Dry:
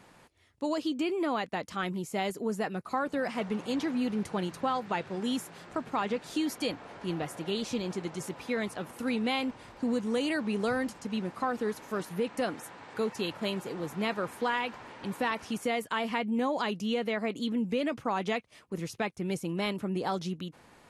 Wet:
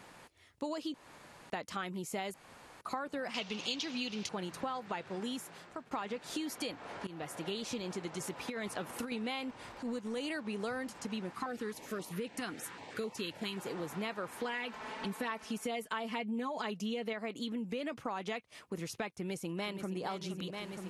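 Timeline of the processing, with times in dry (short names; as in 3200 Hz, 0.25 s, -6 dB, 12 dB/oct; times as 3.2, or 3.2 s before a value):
0.94–1.5 room tone
2.34–2.81 room tone
3.34–4.29 band shelf 4100 Hz +15.5 dB
5.19–5.91 fade out, to -19.5 dB
7.07–7.54 fade in, from -20 dB
8.48–9.12 negative-ratio compressor -33 dBFS, ratio -0.5
9.68–10.48 transient shaper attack -11 dB, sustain -5 dB
11.33–13.58 stepped notch 7.6 Hz 570–1600 Hz
14.44–17.13 comb 4.6 ms, depth 75%
19.16–20.03 echo throw 0.47 s, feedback 75%, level -10 dB
whole clip: low shelf 400 Hz -5 dB; compressor 4:1, threshold -40 dBFS; gain +3.5 dB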